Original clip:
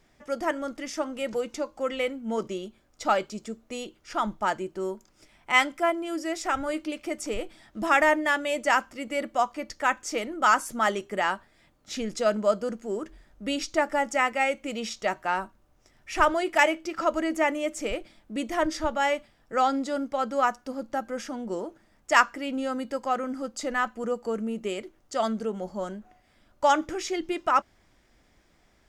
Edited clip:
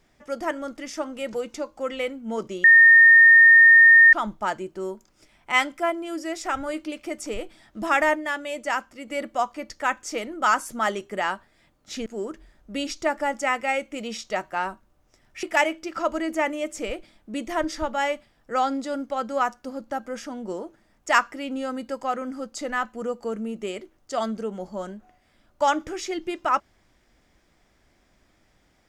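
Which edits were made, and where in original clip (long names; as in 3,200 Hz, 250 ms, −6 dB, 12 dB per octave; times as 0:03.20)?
0:02.64–0:04.13: beep over 1,830 Hz −8.5 dBFS
0:08.15–0:09.08: clip gain −3.5 dB
0:12.06–0:12.78: remove
0:16.15–0:16.45: remove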